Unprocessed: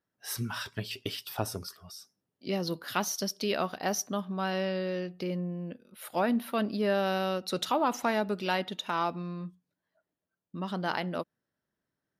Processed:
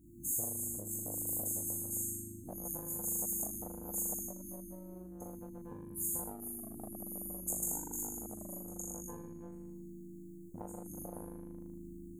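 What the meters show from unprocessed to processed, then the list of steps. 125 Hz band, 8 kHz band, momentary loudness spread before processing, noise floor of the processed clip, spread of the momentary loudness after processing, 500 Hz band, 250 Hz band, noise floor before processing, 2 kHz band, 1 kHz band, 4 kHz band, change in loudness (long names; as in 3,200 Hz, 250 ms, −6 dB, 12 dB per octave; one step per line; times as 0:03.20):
−10.0 dB, +3.5 dB, 13 LU, −50 dBFS, 15 LU, −17.0 dB, −11.0 dB, below −85 dBFS, below −30 dB, −20.5 dB, below −40 dB, −6.5 dB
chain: spectral tilt −2.5 dB per octave
flutter between parallel walls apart 3.5 metres, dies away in 0.76 s
spring reverb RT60 1.6 s, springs 38 ms, chirp 65 ms, DRR −7.5 dB
brick-wall band-stop 360–6,400 Hz
downward compressor 6 to 1, threshold −30 dBFS, peak gain reduction 19.5 dB
high-shelf EQ 5,800 Hz +7 dB
every bin compressed towards the loudest bin 10 to 1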